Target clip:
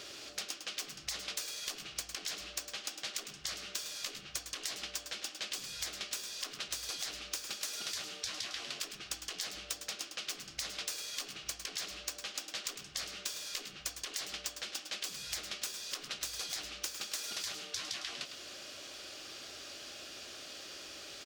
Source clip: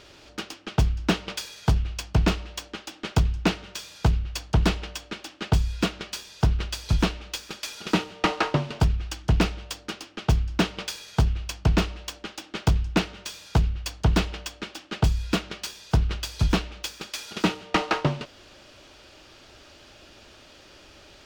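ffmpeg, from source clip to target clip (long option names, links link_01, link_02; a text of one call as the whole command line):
ffmpeg -i in.wav -filter_complex "[0:a]highpass=frequency=190:poles=1,afftfilt=real='re*lt(hypot(re,im),0.0562)':imag='im*lt(hypot(re,im),0.0562)':win_size=1024:overlap=0.75,bass=frequency=250:gain=-3,treble=frequency=4000:gain=8,bandreject=frequency=910:width=6.1,asplit=2[link_01][link_02];[link_02]aecho=0:1:104:0.266[link_03];[link_01][link_03]amix=inputs=2:normalize=0,acrossover=split=1100|2300[link_04][link_05][link_06];[link_04]acompressor=threshold=-54dB:ratio=4[link_07];[link_05]acompressor=threshold=-53dB:ratio=4[link_08];[link_06]acompressor=threshold=-39dB:ratio=4[link_09];[link_07][link_08][link_09]amix=inputs=3:normalize=0,volume=1dB" out.wav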